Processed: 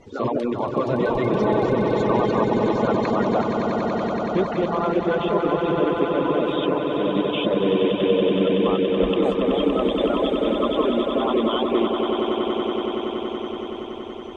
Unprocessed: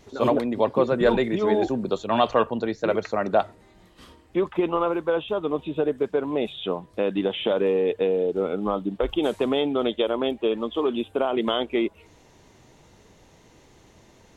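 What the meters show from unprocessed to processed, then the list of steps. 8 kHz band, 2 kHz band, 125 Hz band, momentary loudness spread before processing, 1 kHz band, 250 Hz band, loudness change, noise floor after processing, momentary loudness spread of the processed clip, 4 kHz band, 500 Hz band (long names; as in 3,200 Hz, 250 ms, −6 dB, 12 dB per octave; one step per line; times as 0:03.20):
can't be measured, +2.5 dB, +7.5 dB, 5 LU, +4.0 dB, +5.0 dB, +3.0 dB, −32 dBFS, 5 LU, +3.0 dB, +3.0 dB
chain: spectral magnitudes quantised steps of 30 dB
brickwall limiter −18 dBFS, peak gain reduction 10.5 dB
high-frequency loss of the air 93 metres
echo that builds up and dies away 94 ms, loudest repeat 8, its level −7.5 dB
reverb reduction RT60 0.58 s
level +4.5 dB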